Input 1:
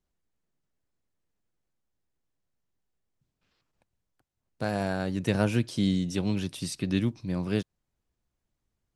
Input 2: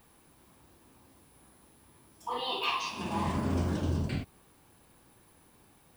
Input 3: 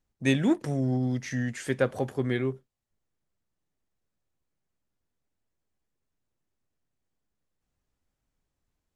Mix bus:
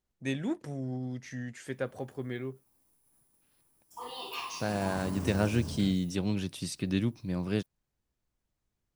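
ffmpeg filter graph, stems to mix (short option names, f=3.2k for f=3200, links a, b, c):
-filter_complex "[0:a]volume=-2.5dB[a];[1:a]agate=range=-33dB:threshold=-51dB:ratio=3:detection=peak,aexciter=amount=2.4:drive=7.7:freq=5.1k,adelay=1700,volume=-7.5dB[b];[2:a]volume=-9dB[c];[a][b][c]amix=inputs=3:normalize=0"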